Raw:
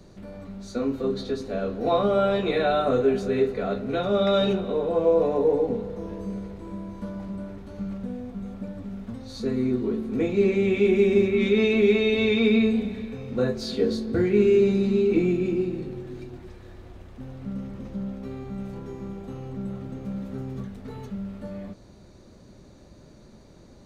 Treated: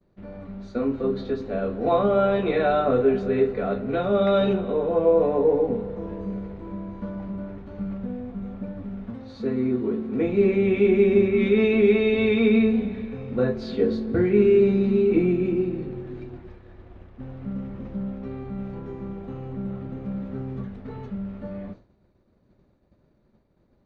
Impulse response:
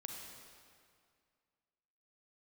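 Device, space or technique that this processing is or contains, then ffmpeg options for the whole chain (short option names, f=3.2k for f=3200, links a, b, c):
hearing-loss simulation: -filter_complex "[0:a]lowpass=2.6k,agate=range=-33dB:threshold=-39dB:ratio=3:detection=peak,asettb=1/sr,asplit=3[a][b][c];[a]atrim=end=9.104[d];[b]atrim=start=9.1:end=10.25,asetpts=PTS-STARTPTS,afade=t=in:d=0.004:c=qsin,afade=t=out:st=1.146:d=0.004:c=qsin,highpass=f=120:p=1[e];[c]atrim=start=10.246[f];[d][e]acrossfade=d=0.004:c1=hsin:c2=qsin[g];[g][f]acrossfade=d=0.004:c1=qsin:c2=hsin,volume=1.5dB"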